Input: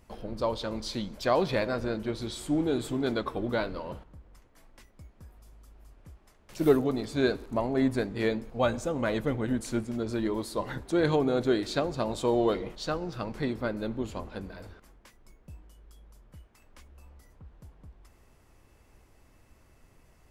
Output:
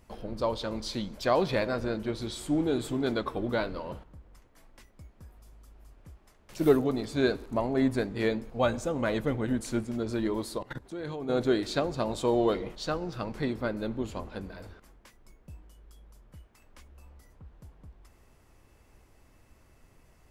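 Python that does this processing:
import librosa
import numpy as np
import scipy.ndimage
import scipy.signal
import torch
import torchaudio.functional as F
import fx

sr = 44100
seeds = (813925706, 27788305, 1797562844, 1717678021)

y = fx.level_steps(x, sr, step_db=18, at=(10.57, 11.28), fade=0.02)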